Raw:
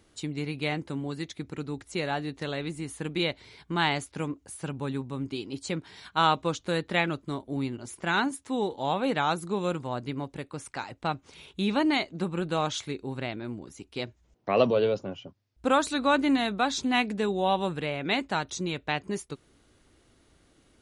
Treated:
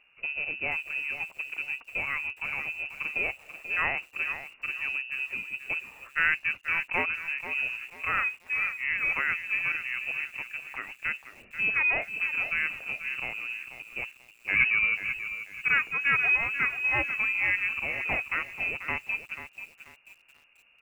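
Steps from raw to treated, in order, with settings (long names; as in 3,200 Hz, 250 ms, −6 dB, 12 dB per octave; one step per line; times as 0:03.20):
in parallel at −12 dB: decimation without filtering 41×
on the sum: high-frequency loss of the air 190 metres
voice inversion scrambler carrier 2,800 Hz
feedback echo at a low word length 487 ms, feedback 35%, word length 8 bits, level −10.5 dB
level −1.5 dB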